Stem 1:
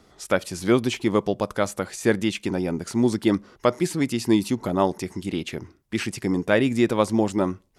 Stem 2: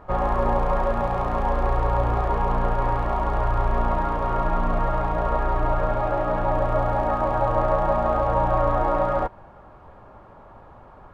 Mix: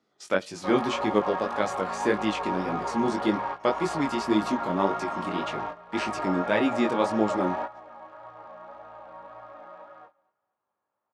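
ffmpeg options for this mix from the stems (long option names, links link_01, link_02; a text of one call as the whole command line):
ffmpeg -i stem1.wav -i stem2.wav -filter_complex "[0:a]volume=-0.5dB,asplit=2[link_01][link_02];[1:a]tiltshelf=frequency=830:gain=-5.5,adelay=550,volume=-3dB,asplit=2[link_03][link_04];[link_04]volume=-18.5dB[link_05];[link_02]apad=whole_len=515385[link_06];[link_03][link_06]sidechaingate=range=-20dB:threshold=-41dB:ratio=16:detection=peak[link_07];[link_05]aecho=0:1:240|480|720|960:1|0.27|0.0729|0.0197[link_08];[link_01][link_07][link_08]amix=inputs=3:normalize=0,agate=range=-13dB:threshold=-48dB:ratio=16:detection=peak,flanger=delay=18.5:depth=4:speed=1.8,highpass=190,lowpass=6200" out.wav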